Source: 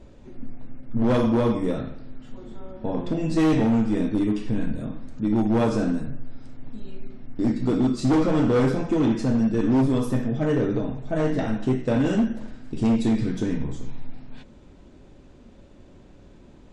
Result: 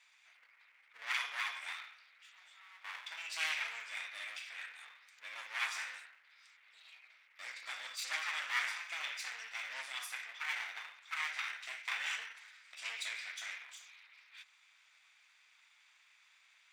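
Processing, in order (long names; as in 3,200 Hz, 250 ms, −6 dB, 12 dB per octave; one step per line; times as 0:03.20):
lower of the sound and its delayed copy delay 0.84 ms
four-pole ladder high-pass 1,700 Hz, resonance 45%
level +6 dB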